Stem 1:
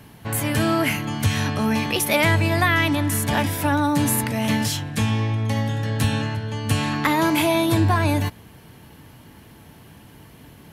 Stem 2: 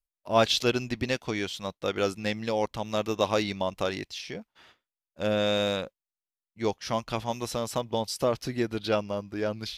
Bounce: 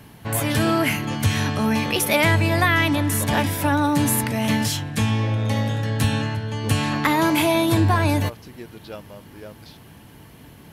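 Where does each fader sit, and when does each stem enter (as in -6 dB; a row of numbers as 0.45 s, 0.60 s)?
+0.5 dB, -10.5 dB; 0.00 s, 0.00 s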